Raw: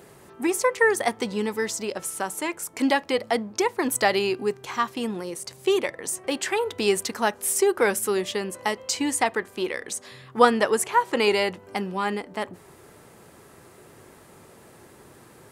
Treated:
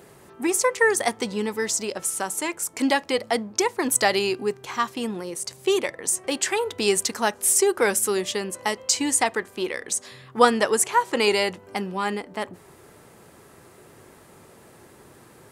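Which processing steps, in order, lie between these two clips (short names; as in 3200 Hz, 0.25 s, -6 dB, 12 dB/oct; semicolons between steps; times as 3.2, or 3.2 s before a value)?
dynamic EQ 7300 Hz, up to +7 dB, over -42 dBFS, Q 0.77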